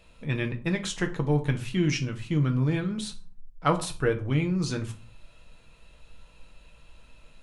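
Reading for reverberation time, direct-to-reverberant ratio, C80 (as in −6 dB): 0.40 s, 3.5 dB, 19.0 dB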